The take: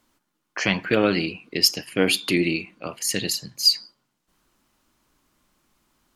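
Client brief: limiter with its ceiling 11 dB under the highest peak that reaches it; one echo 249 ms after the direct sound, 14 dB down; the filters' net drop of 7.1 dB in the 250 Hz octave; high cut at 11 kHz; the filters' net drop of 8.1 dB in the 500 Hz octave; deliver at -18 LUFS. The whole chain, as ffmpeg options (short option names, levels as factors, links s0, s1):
-af "lowpass=11000,equalizer=f=250:t=o:g=-7.5,equalizer=f=500:t=o:g=-7.5,alimiter=limit=0.178:level=0:latency=1,aecho=1:1:249:0.2,volume=2.99"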